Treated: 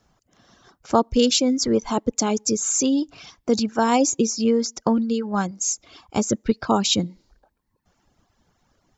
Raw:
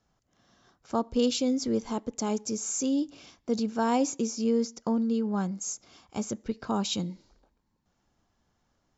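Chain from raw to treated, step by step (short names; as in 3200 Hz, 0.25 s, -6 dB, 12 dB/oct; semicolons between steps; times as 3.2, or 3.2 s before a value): harmonic-percussive split percussive +5 dB; reverb removal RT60 0.94 s; gain +7.5 dB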